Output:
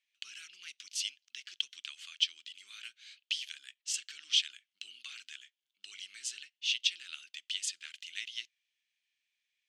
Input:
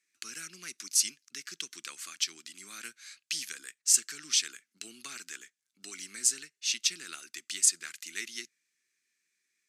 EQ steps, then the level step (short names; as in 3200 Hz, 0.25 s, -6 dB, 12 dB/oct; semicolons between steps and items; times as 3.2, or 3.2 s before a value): band-pass 3100 Hz, Q 5.4; +7.5 dB